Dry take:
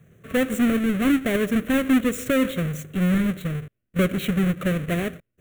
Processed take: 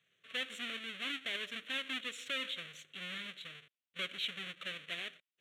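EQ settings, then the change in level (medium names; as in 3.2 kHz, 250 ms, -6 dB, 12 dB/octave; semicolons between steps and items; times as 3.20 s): resonant low-pass 3.4 kHz, resonance Q 3; differentiator; -2.5 dB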